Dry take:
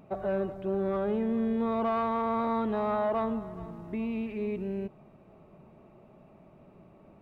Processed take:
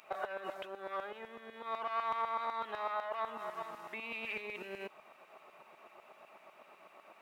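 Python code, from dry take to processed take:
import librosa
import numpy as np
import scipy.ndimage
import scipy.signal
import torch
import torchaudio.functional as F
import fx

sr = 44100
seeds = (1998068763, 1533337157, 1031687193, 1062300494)

y = fx.over_compress(x, sr, threshold_db=-34.0, ratio=-1.0)
y = fx.filter_lfo_highpass(y, sr, shape='saw_down', hz=8.0, low_hz=910.0, high_hz=2100.0, q=0.79)
y = F.gain(torch.from_numpy(y), 7.0).numpy()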